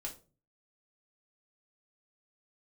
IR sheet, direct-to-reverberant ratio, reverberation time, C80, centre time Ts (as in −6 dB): −1.5 dB, 0.35 s, 18.5 dB, 13 ms